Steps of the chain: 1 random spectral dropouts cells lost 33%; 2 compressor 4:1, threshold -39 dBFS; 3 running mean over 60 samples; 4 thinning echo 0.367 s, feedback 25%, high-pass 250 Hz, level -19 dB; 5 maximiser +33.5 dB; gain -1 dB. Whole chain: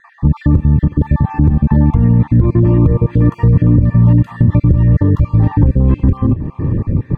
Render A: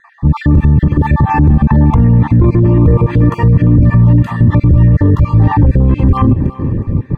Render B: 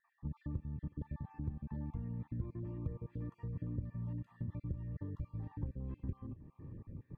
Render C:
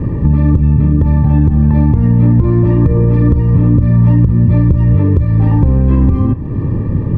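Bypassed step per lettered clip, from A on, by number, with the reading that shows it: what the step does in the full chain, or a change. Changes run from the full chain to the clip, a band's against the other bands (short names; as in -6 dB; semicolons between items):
2, mean gain reduction 14.0 dB; 5, crest factor change +7.0 dB; 1, 1 kHz band -2.0 dB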